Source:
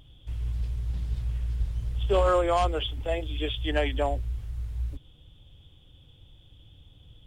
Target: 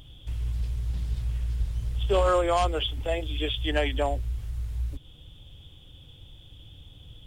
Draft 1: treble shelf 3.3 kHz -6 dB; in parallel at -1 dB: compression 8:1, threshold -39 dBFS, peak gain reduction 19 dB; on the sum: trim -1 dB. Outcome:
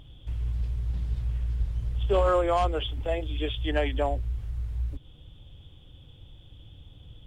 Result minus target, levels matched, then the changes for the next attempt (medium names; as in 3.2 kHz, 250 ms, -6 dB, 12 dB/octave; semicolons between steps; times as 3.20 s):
8 kHz band -9.0 dB
change: treble shelf 3.3 kHz +5 dB